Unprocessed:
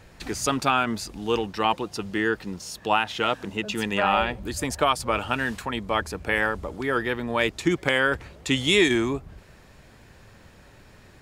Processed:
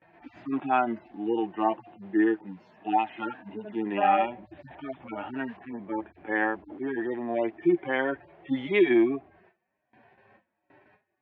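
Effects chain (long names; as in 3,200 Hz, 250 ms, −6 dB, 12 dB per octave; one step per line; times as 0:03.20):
harmonic-percussive split with one part muted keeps harmonic
noise gate with hold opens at −43 dBFS
loudspeaker in its box 280–2,400 Hz, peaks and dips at 320 Hz +10 dB, 480 Hz −9 dB, 720 Hz +8 dB, 1,300 Hz −6 dB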